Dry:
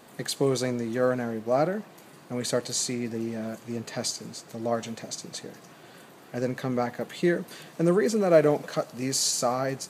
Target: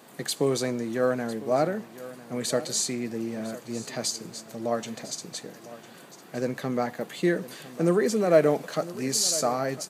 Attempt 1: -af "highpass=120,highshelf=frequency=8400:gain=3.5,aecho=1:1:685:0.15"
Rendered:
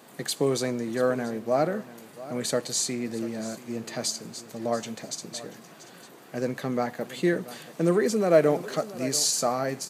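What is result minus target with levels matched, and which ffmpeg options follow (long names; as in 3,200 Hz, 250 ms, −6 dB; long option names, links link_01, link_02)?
echo 318 ms early
-af "highpass=120,highshelf=frequency=8400:gain=3.5,aecho=1:1:1003:0.15"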